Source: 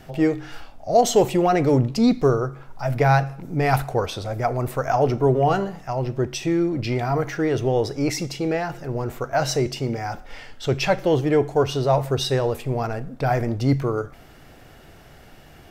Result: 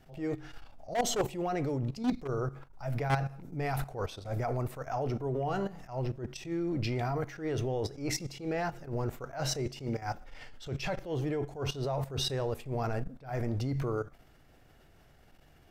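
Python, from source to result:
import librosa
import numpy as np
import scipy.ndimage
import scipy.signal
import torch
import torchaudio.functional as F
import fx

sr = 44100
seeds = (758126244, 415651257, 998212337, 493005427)

y = fx.low_shelf(x, sr, hz=89.0, db=5.0)
y = fx.level_steps(y, sr, step_db=14)
y = np.clip(10.0 ** (18.0 / 20.0) * y, -1.0, 1.0) / 10.0 ** (18.0 / 20.0)
y = fx.attack_slew(y, sr, db_per_s=160.0)
y = y * 10.0 ** (-3.5 / 20.0)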